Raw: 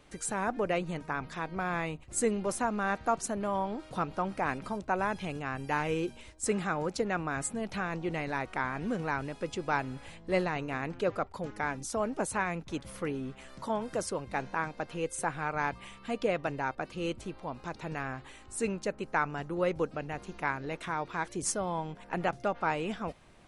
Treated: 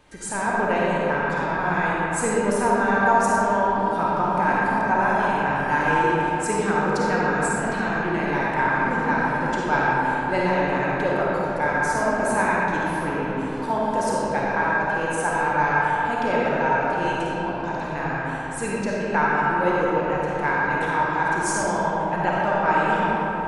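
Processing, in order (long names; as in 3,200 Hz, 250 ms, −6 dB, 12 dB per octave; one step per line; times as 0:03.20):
hollow resonant body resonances 910/1,600 Hz, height 11 dB, ringing for 45 ms
convolution reverb RT60 4.1 s, pre-delay 10 ms, DRR −6.5 dB
level +1.5 dB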